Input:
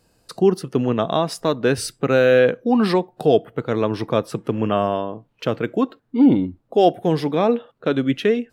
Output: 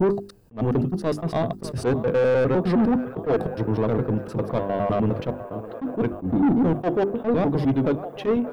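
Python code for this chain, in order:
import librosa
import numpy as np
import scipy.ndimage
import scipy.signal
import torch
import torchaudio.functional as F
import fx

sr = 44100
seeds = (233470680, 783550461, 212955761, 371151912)

p1 = fx.block_reorder(x, sr, ms=102.0, group=5)
p2 = p1 + fx.echo_wet_bandpass(p1, sr, ms=600, feedback_pct=81, hz=1000.0, wet_db=-17, dry=0)
p3 = fx.dmg_noise_colour(p2, sr, seeds[0], colour='violet', level_db=-59.0)
p4 = fx.low_shelf(p3, sr, hz=250.0, db=9.0)
p5 = fx.hum_notches(p4, sr, base_hz=50, count=8)
p6 = 10.0 ** (-15.5 / 20.0) * np.tanh(p5 / 10.0 ** (-15.5 / 20.0))
p7 = fx.high_shelf(p6, sr, hz=2200.0, db=-12.0)
p8 = p7 + 10.0 ** (-24.0 / 20.0) * np.pad(p7, (int(608 * sr / 1000.0), 0))[:len(p7)]
y = fx.attack_slew(p8, sr, db_per_s=290.0)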